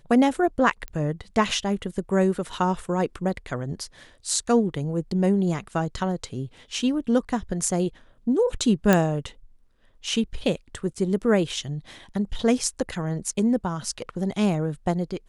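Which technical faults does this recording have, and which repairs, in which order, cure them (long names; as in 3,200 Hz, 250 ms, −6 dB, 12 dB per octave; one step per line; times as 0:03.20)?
0:00.88: click −20 dBFS
0:08.93: click −5 dBFS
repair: click removal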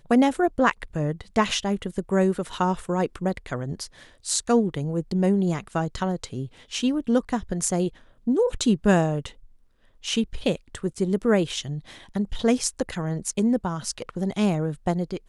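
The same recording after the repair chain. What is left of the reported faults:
none of them is left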